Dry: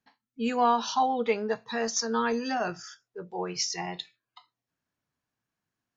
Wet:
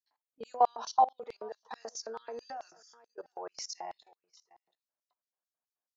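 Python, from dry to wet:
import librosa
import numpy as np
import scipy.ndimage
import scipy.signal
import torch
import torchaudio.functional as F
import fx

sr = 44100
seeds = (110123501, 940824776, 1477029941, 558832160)

y = fx.peak_eq(x, sr, hz=3300.0, db=-11.0, octaves=1.8)
y = y + 10.0 ** (-23.5 / 20.0) * np.pad(y, (int(731 * sr / 1000.0), 0))[:len(y)]
y = fx.filter_lfo_highpass(y, sr, shape='square', hz=4.6, low_hz=620.0, high_hz=4400.0, q=2.2)
y = fx.high_shelf(y, sr, hz=2300.0, db=-3.5)
y = fx.level_steps(y, sr, step_db=20)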